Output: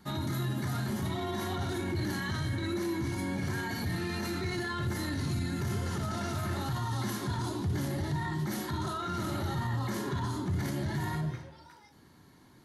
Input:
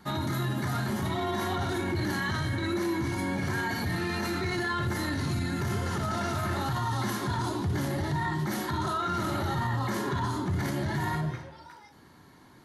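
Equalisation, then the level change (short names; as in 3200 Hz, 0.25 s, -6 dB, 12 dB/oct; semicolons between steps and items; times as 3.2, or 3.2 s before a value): bell 1100 Hz -5 dB 2.8 oct; -1.5 dB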